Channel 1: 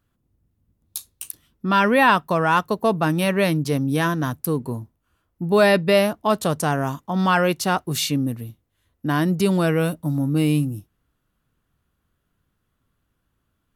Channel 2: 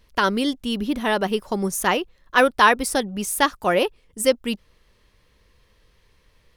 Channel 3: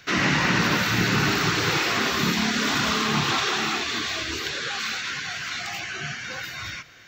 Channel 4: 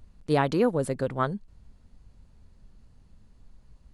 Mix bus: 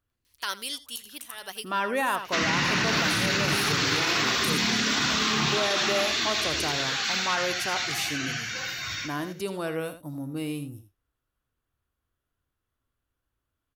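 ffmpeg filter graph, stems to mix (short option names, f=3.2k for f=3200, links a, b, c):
-filter_complex "[0:a]equalizer=f=180:w=1.8:g=-11,volume=-9dB,asplit=3[a][b][c];[b]volume=-11dB[d];[1:a]aderivative,adelay=250,volume=2.5dB,asplit=2[e][f];[f]volume=-18.5dB[g];[2:a]acrossover=split=7200[h][i];[i]acompressor=threshold=-55dB:ratio=4:attack=1:release=60[j];[h][j]amix=inputs=2:normalize=0,highshelf=f=3.6k:g=10,adelay=2250,volume=-3dB,asplit=2[k][l];[l]volume=-8dB[m];[3:a]highpass=f=1.4k:w=0.5412,highpass=f=1.4k:w=1.3066,adelay=100,volume=-14.5dB[n];[c]apad=whole_len=300477[o];[e][o]sidechaincompress=threshold=-49dB:ratio=4:attack=8:release=158[p];[d][g][m]amix=inputs=3:normalize=0,aecho=0:1:82:1[q];[a][p][k][n][q]amix=inputs=5:normalize=0,alimiter=limit=-15.5dB:level=0:latency=1:release=23"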